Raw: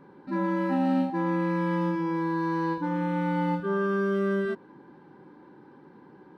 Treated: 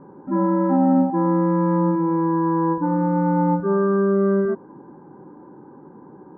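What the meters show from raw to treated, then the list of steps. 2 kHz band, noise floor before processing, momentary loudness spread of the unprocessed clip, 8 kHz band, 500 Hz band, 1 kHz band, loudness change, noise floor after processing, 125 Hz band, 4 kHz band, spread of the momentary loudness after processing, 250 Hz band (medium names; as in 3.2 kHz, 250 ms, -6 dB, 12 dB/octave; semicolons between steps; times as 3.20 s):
-2.5 dB, -53 dBFS, 3 LU, no reading, +8.0 dB, +7.0 dB, +7.5 dB, -45 dBFS, +8.0 dB, under -25 dB, 4 LU, +8.0 dB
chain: low-pass 1.2 kHz 24 dB/octave; trim +8 dB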